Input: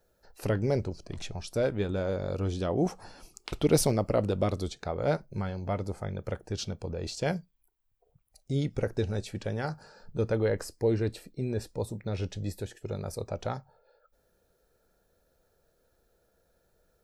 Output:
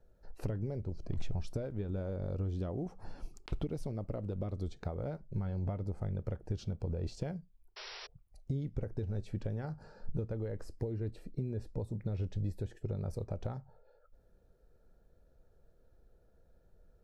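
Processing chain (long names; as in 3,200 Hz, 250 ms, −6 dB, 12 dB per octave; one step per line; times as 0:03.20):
one scale factor per block 7 bits
downward compressor 12 to 1, threshold −36 dBFS, peak gain reduction 19.5 dB
spectral tilt −3 dB per octave
sound drawn into the spectrogram noise, 0:07.76–0:08.07, 360–5,800 Hz −43 dBFS
level −4 dB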